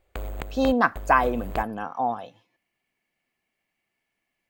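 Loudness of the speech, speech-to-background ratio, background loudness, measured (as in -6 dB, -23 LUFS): -24.5 LUFS, 13.0 dB, -37.5 LUFS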